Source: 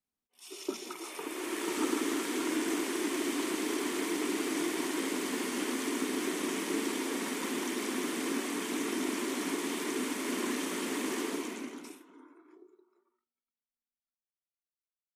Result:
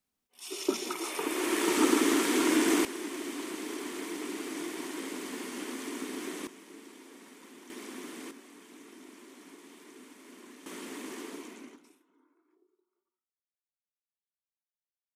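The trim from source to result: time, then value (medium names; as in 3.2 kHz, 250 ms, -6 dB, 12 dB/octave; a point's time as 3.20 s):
+6.5 dB
from 2.85 s -5 dB
from 6.47 s -17.5 dB
from 7.70 s -9 dB
from 8.31 s -18 dB
from 10.66 s -7.5 dB
from 11.76 s -14 dB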